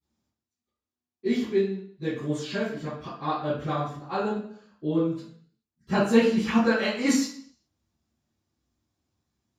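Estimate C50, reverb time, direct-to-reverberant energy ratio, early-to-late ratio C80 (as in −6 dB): 1.0 dB, 0.60 s, −19.5 dB, 6.0 dB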